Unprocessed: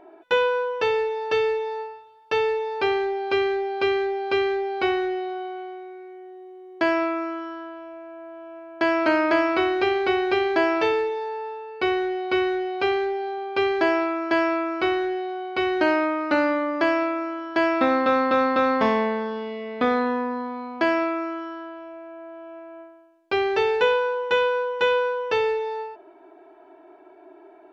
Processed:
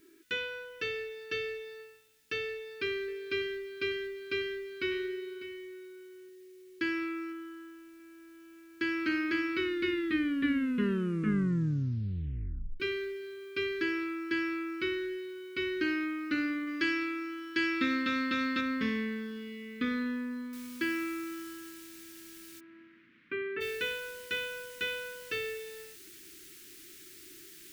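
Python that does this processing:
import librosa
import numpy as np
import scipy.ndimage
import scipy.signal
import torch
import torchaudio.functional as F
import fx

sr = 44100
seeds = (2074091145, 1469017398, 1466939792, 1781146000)

y = fx.echo_single(x, sr, ms=598, db=-14.0, at=(2.48, 6.29))
y = fx.air_absorb(y, sr, metres=240.0, at=(7.32, 8.0))
y = fx.high_shelf(y, sr, hz=2300.0, db=8.5, at=(16.67, 18.61))
y = fx.noise_floor_step(y, sr, seeds[0], at_s=20.53, before_db=-62, after_db=-45, tilt_db=0.0)
y = fx.cabinet(y, sr, low_hz=150.0, low_slope=12, high_hz=2200.0, hz=(230.0, 460.0, 840.0), db=(6, -4, 6), at=(22.59, 23.6), fade=0.02)
y = fx.edit(y, sr, fx.tape_stop(start_s=9.59, length_s=3.21), tone=tone)
y = scipy.signal.sosfilt(scipy.signal.cheby1(2, 1.0, [310.0, 1800.0], 'bandstop', fs=sr, output='sos'), y)
y = y * librosa.db_to_amplitude(-6.0)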